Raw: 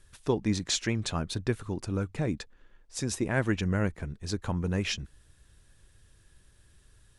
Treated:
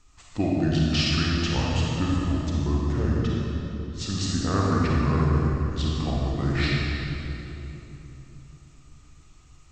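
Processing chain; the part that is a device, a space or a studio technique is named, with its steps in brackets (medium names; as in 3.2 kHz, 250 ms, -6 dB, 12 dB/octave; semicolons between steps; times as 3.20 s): slowed and reverbed (tape speed -26%; reverberation RT60 3.3 s, pre-delay 34 ms, DRR -4.5 dB)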